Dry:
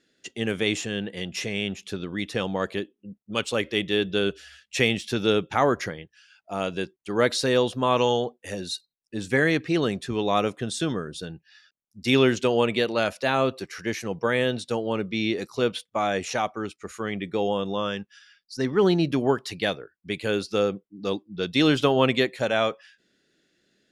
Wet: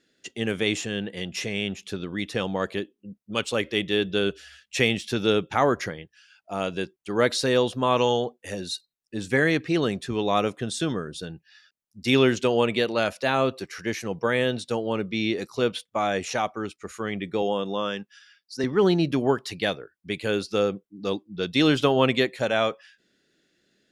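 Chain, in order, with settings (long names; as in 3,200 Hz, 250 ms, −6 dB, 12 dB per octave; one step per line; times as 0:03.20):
0:17.42–0:18.64: high-pass filter 160 Hz 12 dB per octave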